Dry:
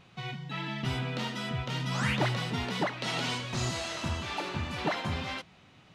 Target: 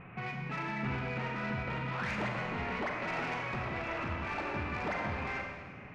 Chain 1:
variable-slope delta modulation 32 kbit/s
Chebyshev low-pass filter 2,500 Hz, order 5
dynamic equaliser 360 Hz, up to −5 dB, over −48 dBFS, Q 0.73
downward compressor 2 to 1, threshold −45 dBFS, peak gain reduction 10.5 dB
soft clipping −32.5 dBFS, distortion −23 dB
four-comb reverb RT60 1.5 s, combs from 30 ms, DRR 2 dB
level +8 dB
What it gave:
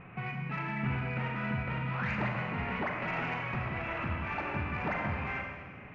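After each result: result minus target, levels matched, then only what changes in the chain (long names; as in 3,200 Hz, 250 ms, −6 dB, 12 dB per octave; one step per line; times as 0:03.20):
soft clipping: distortion −9 dB; 125 Hz band +2.5 dB
change: soft clipping −39.5 dBFS, distortion −14 dB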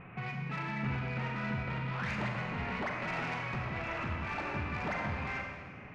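125 Hz band +2.5 dB
change: dynamic equaliser 150 Hz, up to −5 dB, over −48 dBFS, Q 0.73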